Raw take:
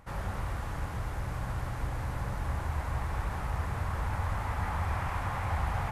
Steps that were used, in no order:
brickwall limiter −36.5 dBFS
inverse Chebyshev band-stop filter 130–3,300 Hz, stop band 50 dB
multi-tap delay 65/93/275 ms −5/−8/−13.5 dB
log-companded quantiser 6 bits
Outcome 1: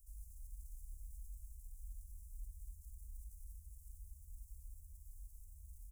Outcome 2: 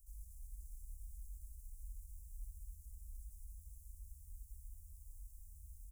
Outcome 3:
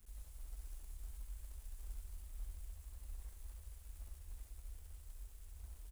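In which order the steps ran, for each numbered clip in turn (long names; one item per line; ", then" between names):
log-companded quantiser, then multi-tap delay, then brickwall limiter, then inverse Chebyshev band-stop filter
multi-tap delay, then brickwall limiter, then log-companded quantiser, then inverse Chebyshev band-stop filter
brickwall limiter, then inverse Chebyshev band-stop filter, then log-companded quantiser, then multi-tap delay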